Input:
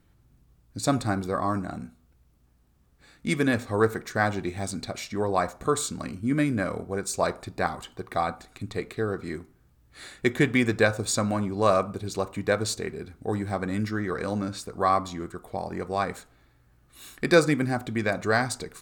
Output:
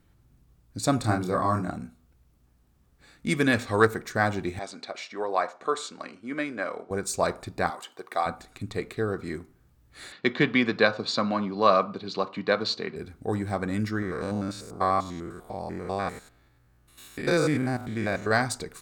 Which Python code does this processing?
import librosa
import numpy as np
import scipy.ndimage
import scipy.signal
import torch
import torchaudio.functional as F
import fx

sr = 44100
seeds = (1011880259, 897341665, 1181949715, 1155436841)

y = fx.doubler(x, sr, ms=28.0, db=-2.5, at=(1.03, 1.7), fade=0.02)
y = fx.peak_eq(y, sr, hz=3200.0, db=fx.line((3.38, 3.0), (3.85, 11.0)), octaves=2.6, at=(3.38, 3.85), fade=0.02)
y = fx.bandpass_edges(y, sr, low_hz=450.0, high_hz=4600.0, at=(4.59, 6.91))
y = fx.highpass(y, sr, hz=420.0, slope=12, at=(7.7, 8.26))
y = fx.cabinet(y, sr, low_hz=150.0, low_slope=24, high_hz=4800.0, hz=(350.0, 1100.0, 3000.0, 4300.0), db=(-3, 5, 4, 8), at=(10.12, 12.96))
y = fx.spec_steps(y, sr, hold_ms=100, at=(14.02, 18.31))